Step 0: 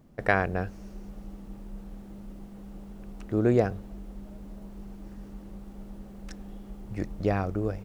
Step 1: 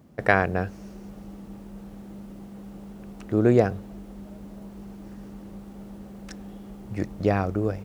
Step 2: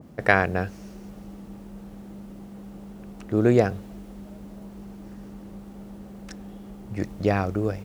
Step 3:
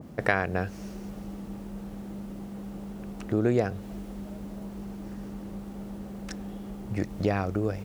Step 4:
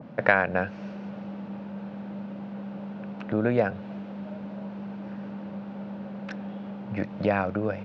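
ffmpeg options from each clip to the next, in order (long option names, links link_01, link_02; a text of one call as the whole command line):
ffmpeg -i in.wav -af "highpass=70,volume=4dB" out.wav
ffmpeg -i in.wav -af "acompressor=mode=upward:threshold=-40dB:ratio=2.5,adynamicequalizer=threshold=0.0112:dfrequency=1700:dqfactor=0.7:tfrequency=1700:tqfactor=0.7:attack=5:release=100:ratio=0.375:range=2:mode=boostabove:tftype=highshelf" out.wav
ffmpeg -i in.wav -af "acompressor=threshold=-29dB:ratio=2,volume=2.5dB" out.wav
ffmpeg -i in.wav -af "highpass=frequency=110:width=0.5412,highpass=frequency=110:width=1.3066,equalizer=frequency=210:width_type=q:width=4:gain=3,equalizer=frequency=370:width_type=q:width=4:gain=-6,equalizer=frequency=570:width_type=q:width=4:gain=8,equalizer=frequency=920:width_type=q:width=4:gain=6,equalizer=frequency=1500:width_type=q:width=4:gain=7,equalizer=frequency=2500:width_type=q:width=4:gain=5,lowpass=frequency=4100:width=0.5412,lowpass=frequency=4100:width=1.3066" out.wav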